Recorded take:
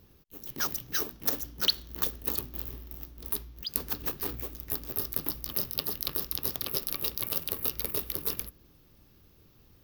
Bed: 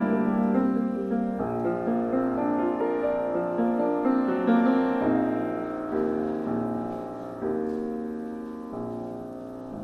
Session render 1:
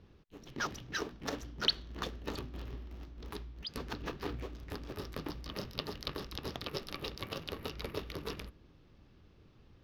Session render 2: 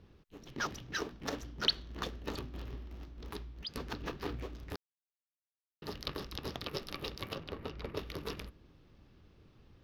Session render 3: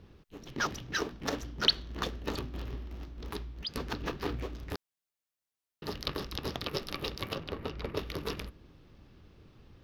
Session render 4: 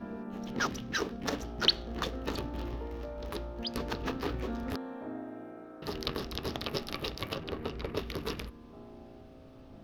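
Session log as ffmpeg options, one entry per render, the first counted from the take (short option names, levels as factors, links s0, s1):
-af "lowpass=3500"
-filter_complex "[0:a]asettb=1/sr,asplit=3[s0][s1][s2];[s0]atrim=end=7.354[s3];[s1]atrim=start=7.35:end=7.97,asetpts=PTS-STARTPTS,afade=t=in:d=0.004:c=qsin,afade=t=out:st=0.616:d=0.004:c=qsin,lowpass=f=1900:p=1[s4];[s2]atrim=start=7.966[s5];[s3][s4]acrossfade=d=0.004:c1=hsin:c2=qsin[s6];[s6][s5]acrossfade=d=0.004:c1=qsin:c2=hsin,asplit=3[s7][s8][s9];[s7]atrim=end=4.76,asetpts=PTS-STARTPTS,afade=t=out:st=4.756:d=0.004:c=hsin[s10];[s8]atrim=start=4.76:end=5.82,asetpts=PTS-STARTPTS,volume=0[s11];[s9]atrim=start=5.82,asetpts=PTS-STARTPTS,afade=t=in:d=0.004:c=hsin[s12];[s10][s11][s12]concat=n=3:v=0:a=1"
-af "volume=1.68"
-filter_complex "[1:a]volume=0.141[s0];[0:a][s0]amix=inputs=2:normalize=0"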